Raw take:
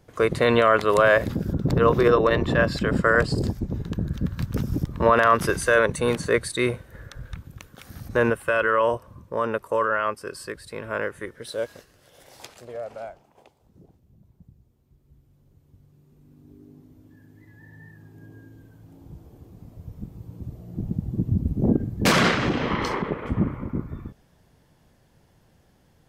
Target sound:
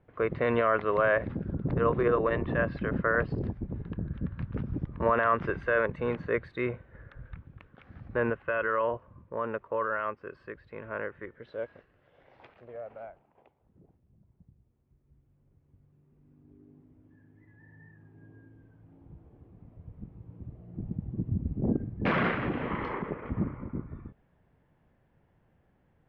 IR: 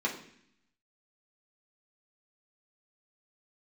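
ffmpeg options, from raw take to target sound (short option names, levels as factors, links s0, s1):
-af "lowpass=f=2500:w=0.5412,lowpass=f=2500:w=1.3066,volume=0.422"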